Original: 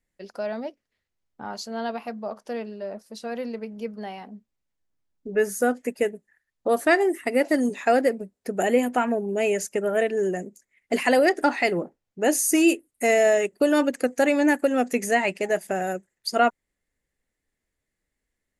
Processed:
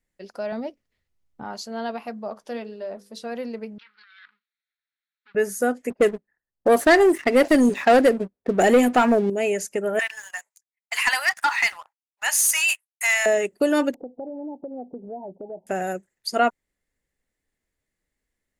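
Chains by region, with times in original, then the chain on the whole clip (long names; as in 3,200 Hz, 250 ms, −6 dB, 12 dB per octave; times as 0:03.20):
0:00.52–0:01.44: low-shelf EQ 170 Hz +9.5 dB + notch filter 1,600 Hz, Q 22
0:02.39–0:03.23: parametric band 3,500 Hz +5.5 dB 0.31 octaves + mains-hum notches 50/100/150/200/250/300/350/400/450/500 Hz + double-tracking delay 12 ms −13 dB
0:03.78–0:05.35: lower of the sound and its delayed copy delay 0.52 ms + elliptic band-pass filter 1,300–4,300 Hz + compressor whose output falls as the input rises −51 dBFS
0:05.90–0:09.30: low-pass that shuts in the quiet parts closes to 680 Hz, open at −18.5 dBFS + leveller curve on the samples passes 2
0:09.99–0:13.26: downward expander −49 dBFS + elliptic high-pass filter 930 Hz, stop band 60 dB + leveller curve on the samples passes 2
0:13.94–0:15.67: Butterworth low-pass 900 Hz 72 dB per octave + downward compressor 2.5 to 1, threshold −38 dBFS
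whole clip: no processing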